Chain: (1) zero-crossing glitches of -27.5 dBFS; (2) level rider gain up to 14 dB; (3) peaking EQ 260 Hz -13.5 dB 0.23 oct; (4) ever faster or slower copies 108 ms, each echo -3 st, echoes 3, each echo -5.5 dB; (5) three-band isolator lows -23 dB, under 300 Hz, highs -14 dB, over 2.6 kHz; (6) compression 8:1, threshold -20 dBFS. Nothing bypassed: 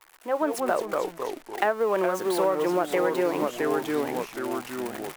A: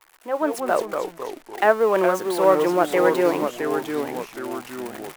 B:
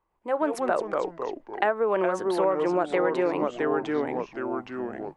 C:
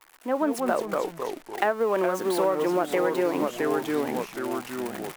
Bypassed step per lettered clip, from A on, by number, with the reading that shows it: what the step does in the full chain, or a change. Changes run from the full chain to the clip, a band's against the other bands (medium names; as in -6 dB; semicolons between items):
6, mean gain reduction 2.5 dB; 1, distortion -14 dB; 3, 250 Hz band +1.5 dB